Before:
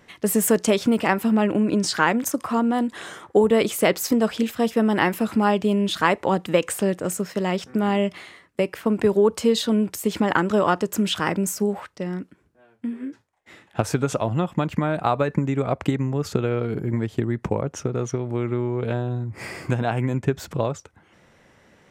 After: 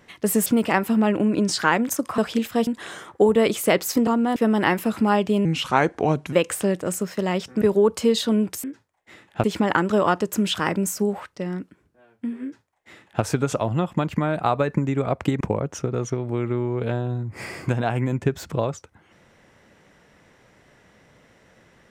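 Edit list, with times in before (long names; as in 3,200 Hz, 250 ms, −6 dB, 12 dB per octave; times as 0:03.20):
0:00.46–0:00.81: remove
0:02.53–0:02.82: swap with 0:04.22–0:04.71
0:05.80–0:06.51: play speed 81%
0:07.80–0:09.02: remove
0:13.03–0:13.83: duplicate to 0:10.04
0:16.01–0:17.42: remove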